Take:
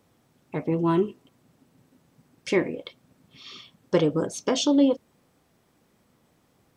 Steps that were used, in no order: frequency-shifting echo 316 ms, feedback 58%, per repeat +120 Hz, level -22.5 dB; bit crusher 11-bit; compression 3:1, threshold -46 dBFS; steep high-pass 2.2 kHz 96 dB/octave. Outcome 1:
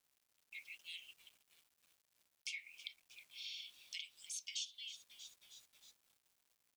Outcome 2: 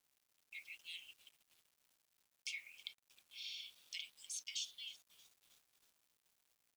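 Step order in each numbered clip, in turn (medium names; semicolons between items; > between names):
frequency-shifting echo > steep high-pass > bit crusher > compression; steep high-pass > compression > frequency-shifting echo > bit crusher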